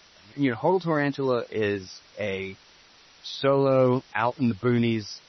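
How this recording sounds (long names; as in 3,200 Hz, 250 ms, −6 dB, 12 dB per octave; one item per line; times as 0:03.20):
a quantiser's noise floor 8 bits, dither triangular
MP3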